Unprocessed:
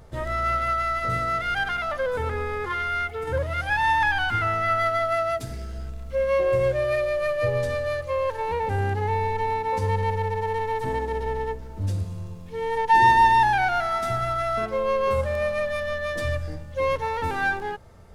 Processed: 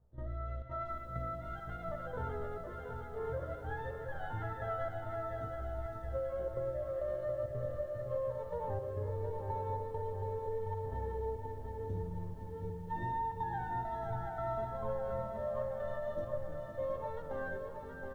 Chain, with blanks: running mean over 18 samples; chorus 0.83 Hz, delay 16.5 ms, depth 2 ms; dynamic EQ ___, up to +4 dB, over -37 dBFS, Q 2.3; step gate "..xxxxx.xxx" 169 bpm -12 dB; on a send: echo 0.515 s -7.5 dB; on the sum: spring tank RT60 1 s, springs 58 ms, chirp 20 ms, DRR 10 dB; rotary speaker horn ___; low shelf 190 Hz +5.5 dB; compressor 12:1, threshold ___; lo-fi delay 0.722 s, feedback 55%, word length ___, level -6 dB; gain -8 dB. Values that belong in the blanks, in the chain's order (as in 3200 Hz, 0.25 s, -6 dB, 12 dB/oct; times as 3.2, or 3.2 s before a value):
670 Hz, 0.8 Hz, -26 dBFS, 10-bit